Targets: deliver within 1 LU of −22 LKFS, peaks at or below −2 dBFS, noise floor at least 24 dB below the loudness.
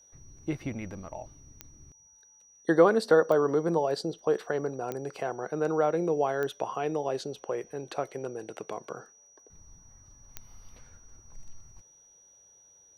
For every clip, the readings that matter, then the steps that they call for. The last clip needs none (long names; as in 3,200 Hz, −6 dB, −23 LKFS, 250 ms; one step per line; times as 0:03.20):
number of clicks 5; interfering tone 5,800 Hz; level of the tone −56 dBFS; integrated loudness −29.0 LKFS; sample peak −7.5 dBFS; target loudness −22.0 LKFS
→ click removal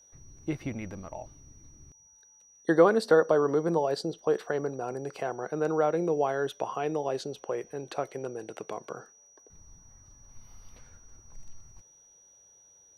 number of clicks 0; interfering tone 5,800 Hz; level of the tone −56 dBFS
→ notch filter 5,800 Hz, Q 30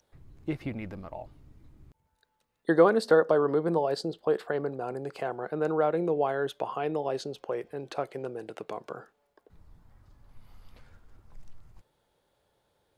interfering tone none found; integrated loudness −29.0 LKFS; sample peak −7.5 dBFS; target loudness −22.0 LKFS
→ level +7 dB
brickwall limiter −2 dBFS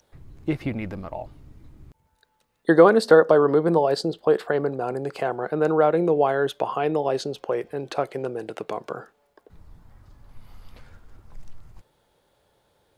integrated loudness −22.0 LKFS; sample peak −2.0 dBFS; background noise floor −68 dBFS